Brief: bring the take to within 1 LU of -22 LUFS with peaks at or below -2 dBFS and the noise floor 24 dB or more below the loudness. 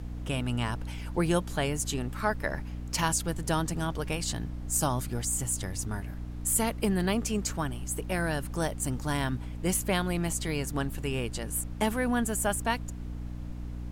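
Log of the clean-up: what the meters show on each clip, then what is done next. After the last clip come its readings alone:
hum 60 Hz; highest harmonic 300 Hz; hum level -36 dBFS; noise floor -38 dBFS; noise floor target -55 dBFS; loudness -30.5 LUFS; peak level -12.5 dBFS; loudness target -22.0 LUFS
-> hum notches 60/120/180/240/300 Hz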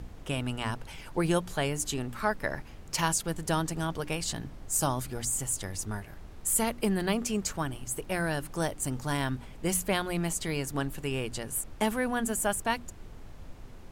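hum not found; noise floor -47 dBFS; noise floor target -55 dBFS
-> noise print and reduce 8 dB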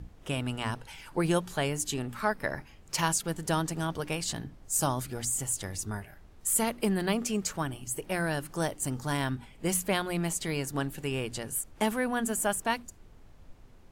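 noise floor -54 dBFS; noise floor target -55 dBFS
-> noise print and reduce 6 dB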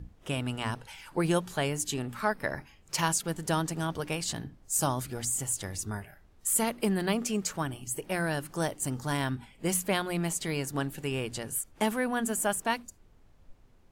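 noise floor -59 dBFS; loudness -31.0 LUFS; peak level -13.5 dBFS; loudness target -22.0 LUFS
-> trim +9 dB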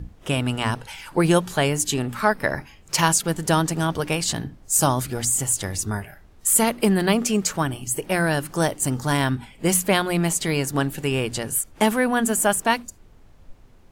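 loudness -22.0 LUFS; peak level -4.5 dBFS; noise floor -50 dBFS

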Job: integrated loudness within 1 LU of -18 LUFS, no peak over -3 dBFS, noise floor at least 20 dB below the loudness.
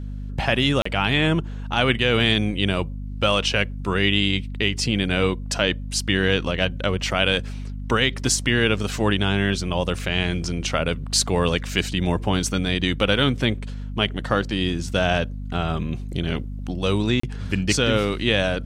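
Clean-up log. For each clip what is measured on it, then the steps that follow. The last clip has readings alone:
dropouts 2; longest dropout 34 ms; hum 50 Hz; highest harmonic 250 Hz; hum level -28 dBFS; loudness -22.0 LUFS; peak level -4.5 dBFS; loudness target -18.0 LUFS
-> interpolate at 0.82/17.20 s, 34 ms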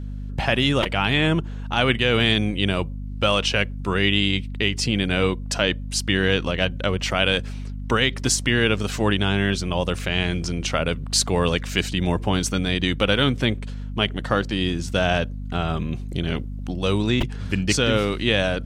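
dropouts 0; hum 50 Hz; highest harmonic 250 Hz; hum level -28 dBFS
-> de-hum 50 Hz, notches 5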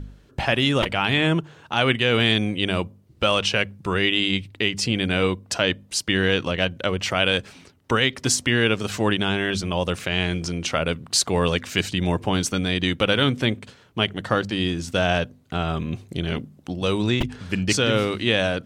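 hum not found; loudness -22.5 LUFS; peak level -5.0 dBFS; loudness target -18.0 LUFS
-> trim +4.5 dB; peak limiter -3 dBFS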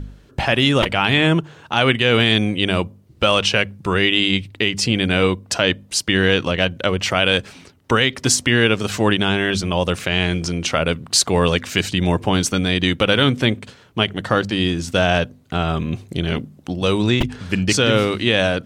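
loudness -18.0 LUFS; peak level -3.0 dBFS; noise floor -49 dBFS

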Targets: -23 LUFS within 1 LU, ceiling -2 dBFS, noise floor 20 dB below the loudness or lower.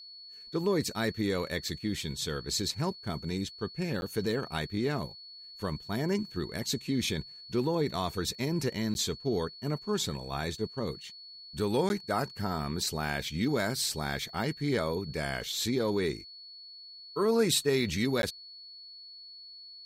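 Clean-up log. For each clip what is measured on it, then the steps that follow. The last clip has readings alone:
dropouts 4; longest dropout 11 ms; steady tone 4.4 kHz; tone level -46 dBFS; loudness -31.5 LUFS; peak level -14.0 dBFS; loudness target -23.0 LUFS
-> interpolate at 4.01/8.94/11.89/18.22 s, 11 ms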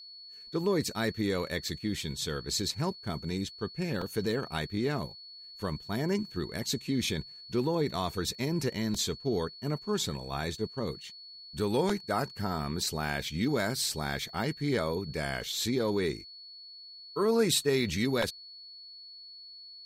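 dropouts 0; steady tone 4.4 kHz; tone level -46 dBFS
-> band-stop 4.4 kHz, Q 30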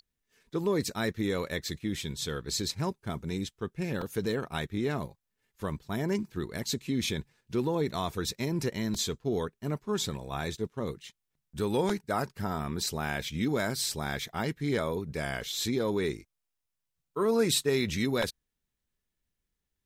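steady tone not found; loudness -32.0 LUFS; peak level -14.0 dBFS; loudness target -23.0 LUFS
-> trim +9 dB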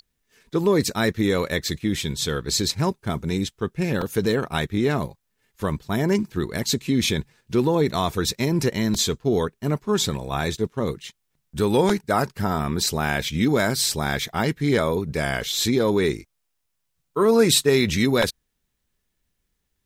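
loudness -23.0 LUFS; peak level -5.0 dBFS; noise floor -75 dBFS

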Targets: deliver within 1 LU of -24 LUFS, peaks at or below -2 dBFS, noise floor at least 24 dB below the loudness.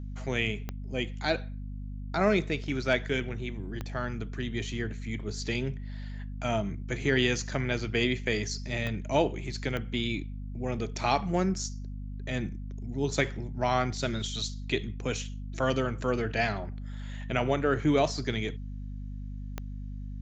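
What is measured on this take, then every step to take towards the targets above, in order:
clicks found 5; hum 50 Hz; highest harmonic 250 Hz; hum level -35 dBFS; loudness -31.0 LUFS; peak level -9.5 dBFS; loudness target -24.0 LUFS
-> de-click; hum notches 50/100/150/200/250 Hz; trim +7 dB

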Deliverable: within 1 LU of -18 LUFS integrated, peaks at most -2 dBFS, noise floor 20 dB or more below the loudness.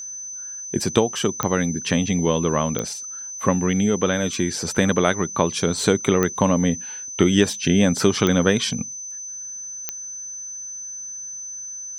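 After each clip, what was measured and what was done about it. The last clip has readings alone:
clicks found 5; steady tone 6.1 kHz; tone level -31 dBFS; loudness -22.0 LUFS; peak level -1.0 dBFS; loudness target -18.0 LUFS
-> de-click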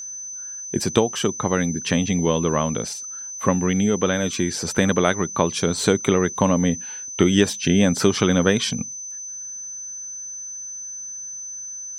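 clicks found 0; steady tone 6.1 kHz; tone level -31 dBFS
-> band-stop 6.1 kHz, Q 30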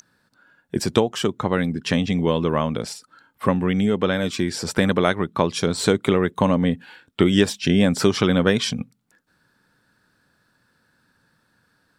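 steady tone not found; loudness -21.5 LUFS; peak level -1.0 dBFS; loudness target -18.0 LUFS
-> trim +3.5 dB; peak limiter -2 dBFS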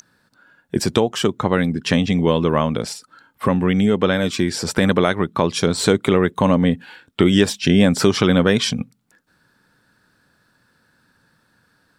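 loudness -18.5 LUFS; peak level -2.0 dBFS; noise floor -63 dBFS

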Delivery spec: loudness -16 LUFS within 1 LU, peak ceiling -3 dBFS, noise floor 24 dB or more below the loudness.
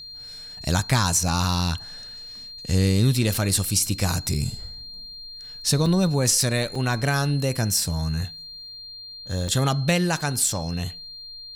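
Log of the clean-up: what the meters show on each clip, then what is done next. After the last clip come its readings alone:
dropouts 5; longest dropout 3.3 ms; steady tone 4.2 kHz; tone level -37 dBFS; loudness -23.0 LUFS; peak level -8.5 dBFS; loudness target -16.0 LUFS
-> interpolate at 1.28/3.34/5.86/6.75/9.48 s, 3.3 ms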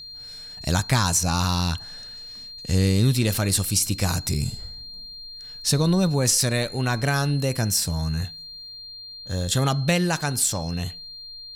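dropouts 0; steady tone 4.2 kHz; tone level -37 dBFS
-> band-stop 4.2 kHz, Q 30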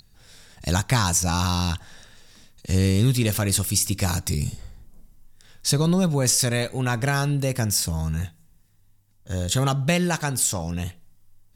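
steady tone not found; loudness -23.0 LUFS; peak level -8.5 dBFS; loudness target -16.0 LUFS
-> trim +7 dB; peak limiter -3 dBFS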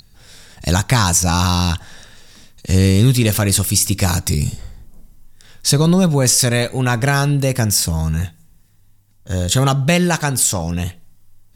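loudness -16.0 LUFS; peak level -3.0 dBFS; noise floor -51 dBFS

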